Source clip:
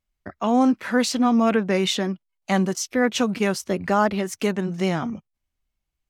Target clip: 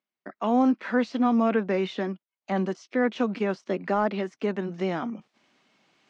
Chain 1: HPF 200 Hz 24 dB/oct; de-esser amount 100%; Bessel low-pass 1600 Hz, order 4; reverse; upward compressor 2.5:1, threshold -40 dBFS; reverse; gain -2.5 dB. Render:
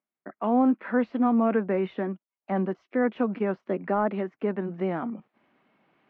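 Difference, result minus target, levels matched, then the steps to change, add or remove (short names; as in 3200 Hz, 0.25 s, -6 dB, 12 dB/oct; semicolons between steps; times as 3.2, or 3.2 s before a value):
4000 Hz band -11.5 dB
change: Bessel low-pass 4000 Hz, order 4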